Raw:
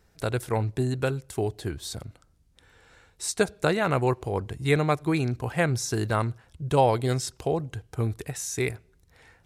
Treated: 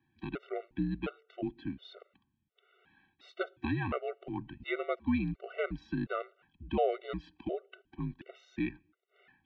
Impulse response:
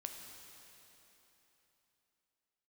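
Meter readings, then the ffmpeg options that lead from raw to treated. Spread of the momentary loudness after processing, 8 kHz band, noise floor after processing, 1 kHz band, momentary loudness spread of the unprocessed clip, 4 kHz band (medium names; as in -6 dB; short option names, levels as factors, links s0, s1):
15 LU, under -40 dB, -80 dBFS, -11.5 dB, 10 LU, -14.0 dB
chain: -af "equalizer=f=500:t=o:w=1:g=-6,equalizer=f=1000:t=o:w=1:g=-6,equalizer=f=2000:t=o:w=1:g=-5,highpass=f=210:t=q:w=0.5412,highpass=f=210:t=q:w=1.307,lowpass=f=3200:t=q:w=0.5176,lowpass=f=3200:t=q:w=0.7071,lowpass=f=3200:t=q:w=1.932,afreqshift=-75,afftfilt=real='re*gt(sin(2*PI*1.4*pts/sr)*(1-2*mod(floor(b*sr/1024/380),2)),0)':imag='im*gt(sin(2*PI*1.4*pts/sr)*(1-2*mod(floor(b*sr/1024/380),2)),0)':win_size=1024:overlap=0.75"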